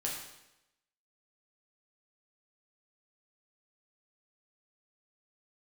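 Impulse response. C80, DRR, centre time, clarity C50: 5.5 dB, -3.0 dB, 48 ms, 3.0 dB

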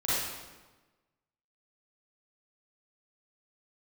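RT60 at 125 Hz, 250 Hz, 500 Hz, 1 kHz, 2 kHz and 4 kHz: 1.4, 1.4, 1.3, 1.2, 1.1, 0.95 s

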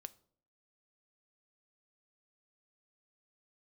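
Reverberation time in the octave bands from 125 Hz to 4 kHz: 0.65, 0.65, 0.65, 0.50, 0.40, 0.40 s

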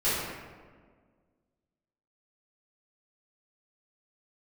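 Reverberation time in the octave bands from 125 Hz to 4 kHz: 1.9, 2.1, 1.8, 1.5, 1.2, 0.85 s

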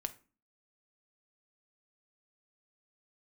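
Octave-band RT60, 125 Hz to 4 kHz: 0.45, 0.55, 0.35, 0.35, 0.30, 0.25 s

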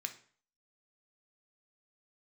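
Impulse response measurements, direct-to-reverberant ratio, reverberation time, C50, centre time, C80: 5.5 dB, 0.45 s, 12.5 dB, 8 ms, 17.5 dB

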